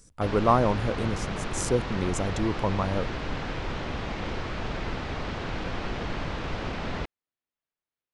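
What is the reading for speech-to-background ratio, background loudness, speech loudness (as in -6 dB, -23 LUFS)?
6.0 dB, -33.5 LUFS, -27.5 LUFS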